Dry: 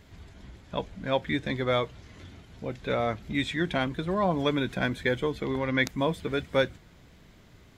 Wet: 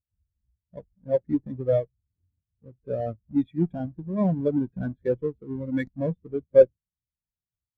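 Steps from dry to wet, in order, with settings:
each half-wave held at its own peak
harmonic generator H 4 −14 dB, 6 −15 dB, 7 −28 dB, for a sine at −10.5 dBFS
every bin expanded away from the loudest bin 2.5 to 1
level +4.5 dB

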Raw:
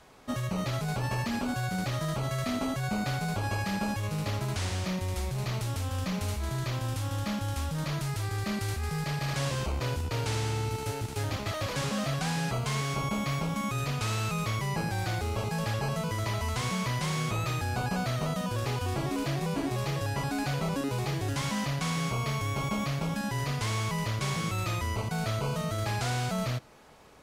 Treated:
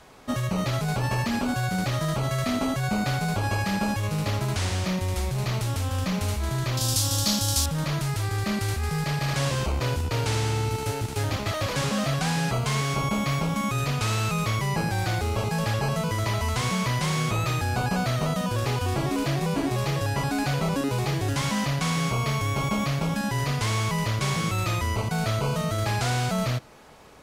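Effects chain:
0:06.77–0:07.66: high shelf with overshoot 3,200 Hz +13 dB, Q 1.5
level +5 dB

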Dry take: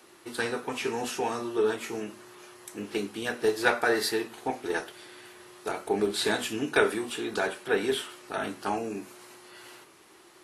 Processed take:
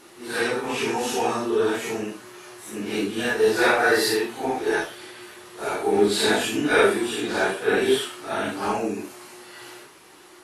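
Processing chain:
random phases in long frames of 200 ms
level +6.5 dB

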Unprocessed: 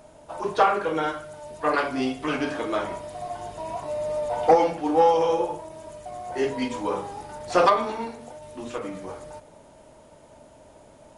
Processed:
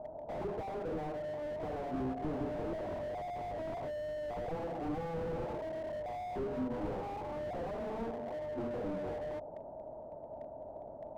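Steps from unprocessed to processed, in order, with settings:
downward compressor 6 to 1, threshold −29 dBFS, peak gain reduction 16 dB
transistor ladder low-pass 810 Hz, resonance 60%
slew-rate limiting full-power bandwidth 2.8 Hz
level +8.5 dB

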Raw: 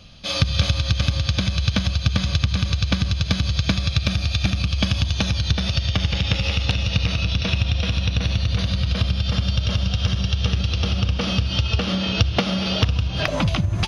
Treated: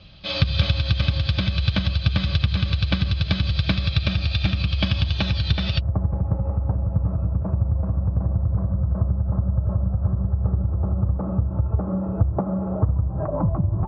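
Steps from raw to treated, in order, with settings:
Butterworth low-pass 4,600 Hz 36 dB per octave, from 0:05.78 1,100 Hz
notch comb filter 240 Hz

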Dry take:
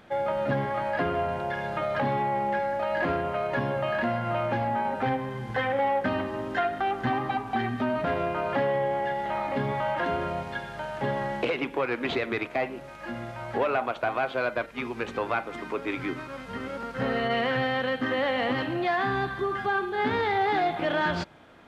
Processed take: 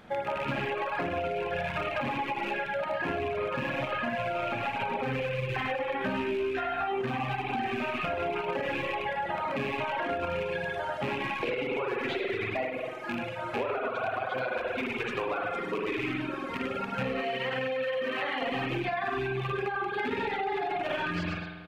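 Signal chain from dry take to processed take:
loose part that buzzes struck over −37 dBFS, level −22 dBFS
loudspeakers that aren't time-aligned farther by 35 metres −6 dB, 50 metres −11 dB, 77 metres −12 dB
convolution reverb RT60 1.6 s, pre-delay 46 ms, DRR −3 dB
brickwall limiter −14 dBFS, peak gain reduction 7 dB
reverb reduction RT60 1.4 s
0:05.99–0:07.02: double-tracking delay 15 ms −2 dB
0:17.21–0:18.42: high-pass filter 300 Hz 6 dB per octave
downward compressor, threshold −28 dBFS, peak gain reduction 9 dB

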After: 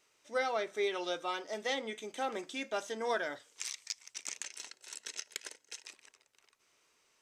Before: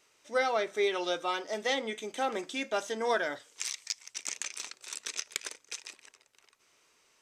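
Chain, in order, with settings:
0:04.44–0:05.86: notch comb filter 1,200 Hz
level −4.5 dB

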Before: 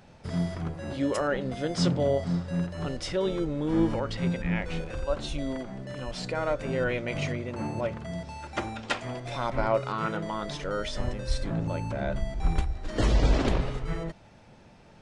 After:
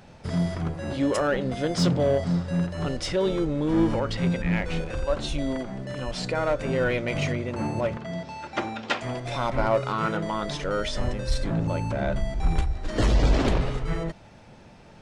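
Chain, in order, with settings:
in parallel at −4 dB: hard clipping −25.5 dBFS, distortion −9 dB
0:07.97–0:09.01: on the sum: band-pass filter 150–5,600 Hz

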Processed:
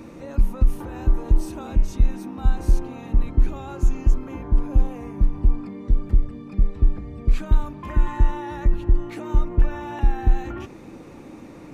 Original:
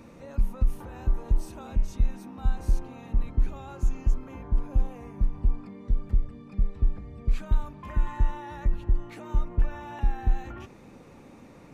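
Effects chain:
parametric band 320 Hz +8 dB 0.35 octaves
level +6 dB

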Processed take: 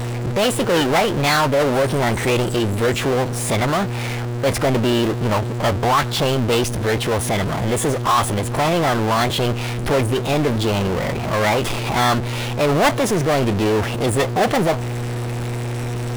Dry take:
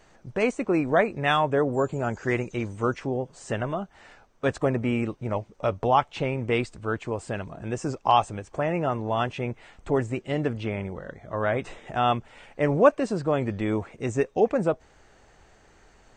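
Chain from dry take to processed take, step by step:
hum with harmonics 120 Hz, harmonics 4, −47 dBFS −8 dB per octave
power curve on the samples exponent 0.35
formants moved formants +4 semitones
level −3.5 dB

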